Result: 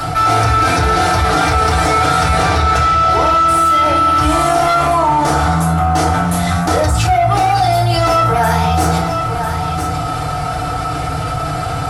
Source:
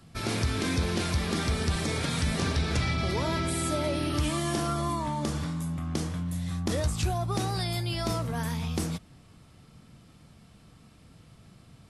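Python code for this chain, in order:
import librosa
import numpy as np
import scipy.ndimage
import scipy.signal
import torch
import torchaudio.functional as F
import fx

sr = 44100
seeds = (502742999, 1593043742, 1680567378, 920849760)

p1 = fx.peak_eq(x, sr, hz=220.0, db=-15.0, octaves=0.81)
p2 = fx.rider(p1, sr, range_db=10, speed_s=0.5)
p3 = p1 + (p2 * librosa.db_to_amplitude(0.0))
p4 = fx.small_body(p3, sr, hz=(750.0, 1300.0), ring_ms=25, db=17)
p5 = 10.0 ** (-17.5 / 20.0) * np.tanh(p4 / 10.0 ** (-17.5 / 20.0))
p6 = p5 + 10.0 ** (-19.5 / 20.0) * np.pad(p5, (int(1000 * sr / 1000.0), 0))[:len(p5)]
p7 = fx.rev_fdn(p6, sr, rt60_s=0.46, lf_ratio=1.35, hf_ratio=0.6, size_ms=20.0, drr_db=-6.0)
p8 = fx.env_flatten(p7, sr, amount_pct=70)
y = p8 * librosa.db_to_amplitude(-3.5)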